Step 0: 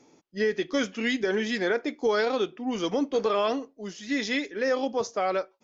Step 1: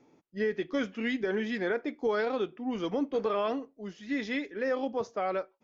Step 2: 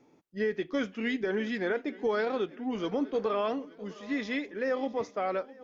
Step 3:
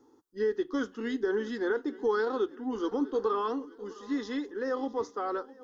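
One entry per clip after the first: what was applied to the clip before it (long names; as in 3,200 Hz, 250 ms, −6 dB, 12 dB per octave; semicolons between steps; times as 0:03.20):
bass and treble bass +3 dB, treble −13 dB; level −4.5 dB
feedback echo with a long and a short gap by turns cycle 873 ms, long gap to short 3 to 1, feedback 33%, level −20 dB
phaser with its sweep stopped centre 630 Hz, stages 6; level +3 dB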